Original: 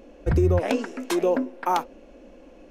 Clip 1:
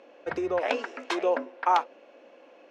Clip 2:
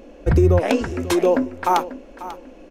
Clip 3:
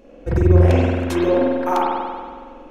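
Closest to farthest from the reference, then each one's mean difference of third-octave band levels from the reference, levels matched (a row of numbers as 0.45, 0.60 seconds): 2, 1, 3; 2.0, 5.5, 7.5 decibels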